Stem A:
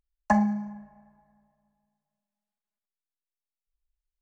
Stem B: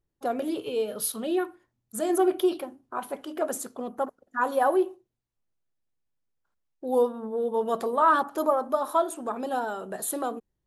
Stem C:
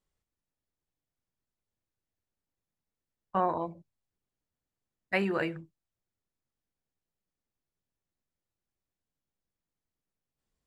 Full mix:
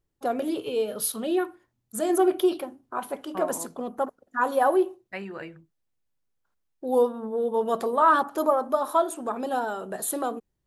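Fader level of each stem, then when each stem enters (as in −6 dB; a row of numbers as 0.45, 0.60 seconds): muted, +1.5 dB, −7.5 dB; muted, 0.00 s, 0.00 s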